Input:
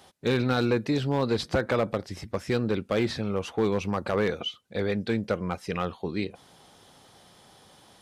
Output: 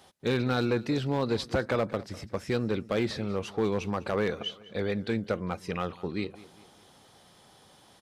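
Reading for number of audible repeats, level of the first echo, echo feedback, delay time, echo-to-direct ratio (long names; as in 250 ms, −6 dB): 3, −19.0 dB, 45%, 200 ms, −18.0 dB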